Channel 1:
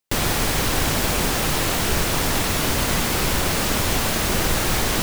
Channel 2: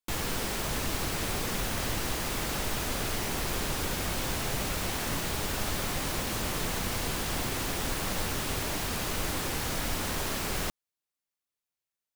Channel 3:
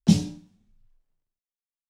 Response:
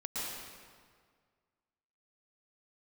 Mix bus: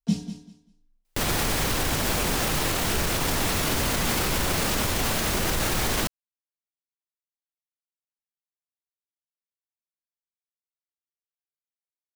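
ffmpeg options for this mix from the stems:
-filter_complex "[0:a]alimiter=limit=-17dB:level=0:latency=1,adelay=1050,volume=1.5dB[a];[2:a]aecho=1:1:4.3:1,volume=-10.5dB,asplit=2[b][c];[c]volume=-11.5dB,aecho=0:1:195|390|585:1|0.21|0.0441[d];[a][b][d]amix=inputs=3:normalize=0"

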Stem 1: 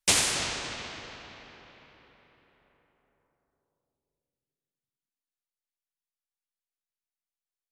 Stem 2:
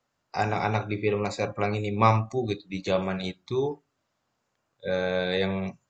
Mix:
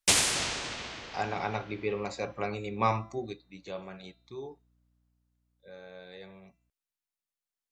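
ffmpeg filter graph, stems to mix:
-filter_complex "[0:a]volume=-0.5dB[a];[1:a]highpass=f=170:p=1,bandreject=f=336.1:t=h:w=4,bandreject=f=672.2:t=h:w=4,bandreject=f=1.0083k:t=h:w=4,bandreject=f=1.3444k:t=h:w=4,bandreject=f=1.6805k:t=h:w=4,bandreject=f=2.0166k:t=h:w=4,bandreject=f=2.3527k:t=h:w=4,bandreject=f=2.6888k:t=h:w=4,bandreject=f=3.0249k:t=h:w=4,bandreject=f=3.361k:t=h:w=4,bandreject=f=3.6971k:t=h:w=4,bandreject=f=4.0332k:t=h:w=4,bandreject=f=4.3693k:t=h:w=4,bandreject=f=4.7054k:t=h:w=4,bandreject=f=5.0415k:t=h:w=4,bandreject=f=5.3776k:t=h:w=4,bandreject=f=5.7137k:t=h:w=4,bandreject=f=6.0498k:t=h:w=4,aeval=exprs='val(0)+0.002*(sin(2*PI*60*n/s)+sin(2*PI*2*60*n/s)/2+sin(2*PI*3*60*n/s)/3+sin(2*PI*4*60*n/s)/4+sin(2*PI*5*60*n/s)/5)':c=same,adelay=800,volume=-5.5dB,afade=t=out:st=3.15:d=0.25:silence=0.398107,afade=t=out:st=4.61:d=0.68:silence=0.446684[b];[a][b]amix=inputs=2:normalize=0"

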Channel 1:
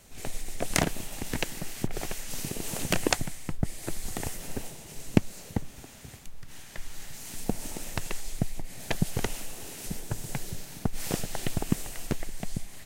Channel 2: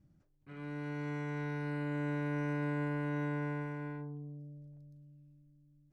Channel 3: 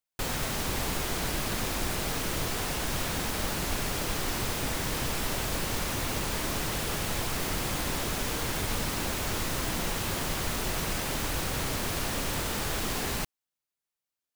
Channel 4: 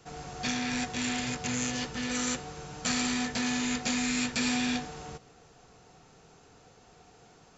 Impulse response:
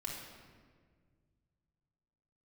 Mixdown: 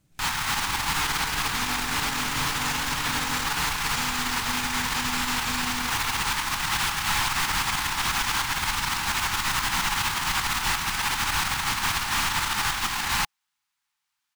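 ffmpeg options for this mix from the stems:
-filter_complex "[0:a]volume=-19dB[a];[1:a]volume=-1dB[b];[2:a]firequalizer=gain_entry='entry(160,0);entry(290,-4);entry(540,-18);entry(830,12);entry(1400,12);entry(13000,1)':delay=0.05:min_phase=1,acrusher=bits=2:mode=log:mix=0:aa=0.000001,volume=2dB[c];[3:a]adelay=1100,volume=-0.5dB[d];[a][b][c][d]amix=inputs=4:normalize=0,alimiter=limit=-17.5dB:level=0:latency=1:release=56"

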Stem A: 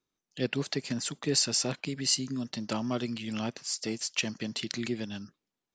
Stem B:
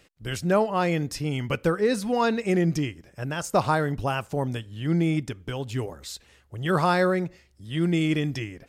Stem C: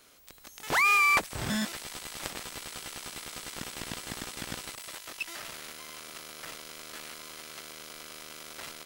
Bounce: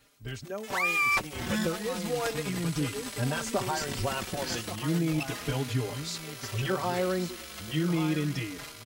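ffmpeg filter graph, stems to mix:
-filter_complex "[0:a]highpass=290,asplit=2[a][b];[b]afreqshift=2.6[c];[a][c]amix=inputs=2:normalize=1,adelay=2400,volume=-14dB[d];[1:a]acompressor=threshold=-29dB:ratio=6,lowpass=6.9k,volume=-3dB,asplit=2[e][f];[f]volume=-9.5dB[g];[2:a]volume=-3.5dB[h];[g]aecho=0:1:1137:1[i];[d][e][h][i]amix=inputs=4:normalize=0,dynaudnorm=f=300:g=9:m=7.5dB,asplit=2[j][k];[k]adelay=4.5,afreqshift=-0.34[l];[j][l]amix=inputs=2:normalize=1"

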